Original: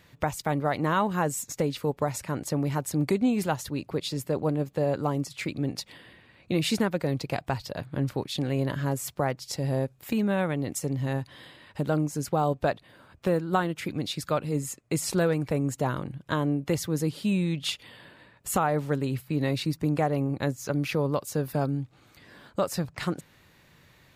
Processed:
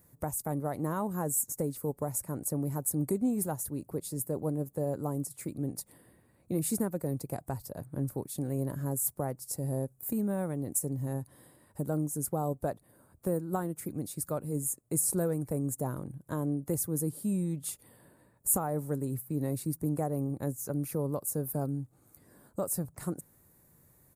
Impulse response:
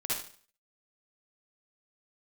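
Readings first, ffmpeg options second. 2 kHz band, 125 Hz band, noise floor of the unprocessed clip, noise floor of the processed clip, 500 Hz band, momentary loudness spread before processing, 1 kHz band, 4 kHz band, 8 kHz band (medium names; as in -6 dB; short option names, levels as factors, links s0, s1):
-16.5 dB, -5.0 dB, -59 dBFS, -66 dBFS, -6.5 dB, 7 LU, -9.5 dB, -18.5 dB, +3.0 dB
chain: -af "firequalizer=gain_entry='entry(320,0);entry(2900,-21);entry(9100,13)':delay=0.05:min_phase=1,volume=0.562"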